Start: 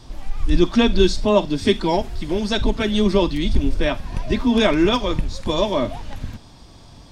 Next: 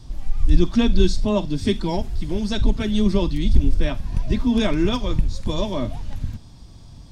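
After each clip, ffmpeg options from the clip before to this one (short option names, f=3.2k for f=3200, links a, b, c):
-af "bass=f=250:g=11,treble=f=4k:g=5,volume=-7.5dB"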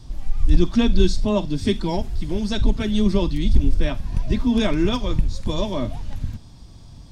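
-af "volume=4.5dB,asoftclip=hard,volume=-4.5dB"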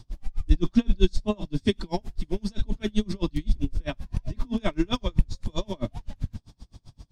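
-af "aeval=exprs='val(0)*pow(10,-34*(0.5-0.5*cos(2*PI*7.7*n/s))/20)':c=same"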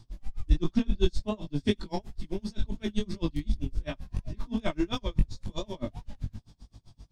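-af "flanger=delay=18:depth=3:speed=2.8,aeval=exprs='0.316*(cos(1*acos(clip(val(0)/0.316,-1,1)))-cos(1*PI/2))+0.00794*(cos(7*acos(clip(val(0)/0.316,-1,1)))-cos(7*PI/2))':c=same"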